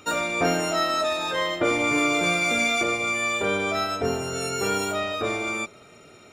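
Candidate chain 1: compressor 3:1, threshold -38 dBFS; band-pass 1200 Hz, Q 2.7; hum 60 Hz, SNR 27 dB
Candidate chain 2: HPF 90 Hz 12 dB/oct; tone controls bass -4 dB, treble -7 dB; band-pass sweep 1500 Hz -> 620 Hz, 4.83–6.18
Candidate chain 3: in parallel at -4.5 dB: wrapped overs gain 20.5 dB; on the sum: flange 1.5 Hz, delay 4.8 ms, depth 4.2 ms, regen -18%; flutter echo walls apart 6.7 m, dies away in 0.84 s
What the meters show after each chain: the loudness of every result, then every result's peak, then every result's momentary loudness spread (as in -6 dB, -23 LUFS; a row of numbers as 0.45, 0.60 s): -43.5, -31.5, -22.0 LUFS; -31.5, -19.5, -10.5 dBFS; 8, 8, 5 LU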